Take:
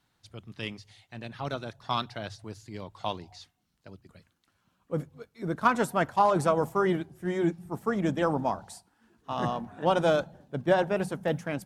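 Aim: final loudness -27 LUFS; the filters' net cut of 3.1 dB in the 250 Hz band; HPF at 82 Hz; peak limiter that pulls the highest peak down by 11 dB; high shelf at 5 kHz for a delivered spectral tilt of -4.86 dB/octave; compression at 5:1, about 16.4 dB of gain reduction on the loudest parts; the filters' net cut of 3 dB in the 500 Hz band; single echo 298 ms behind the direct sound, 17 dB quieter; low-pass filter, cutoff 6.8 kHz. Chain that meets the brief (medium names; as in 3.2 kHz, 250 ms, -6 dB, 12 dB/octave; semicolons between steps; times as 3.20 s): high-pass 82 Hz; low-pass 6.8 kHz; peaking EQ 250 Hz -3.5 dB; peaking EQ 500 Hz -3 dB; treble shelf 5 kHz +8 dB; compression 5:1, threshold -38 dBFS; peak limiter -33.5 dBFS; delay 298 ms -17 dB; trim +19 dB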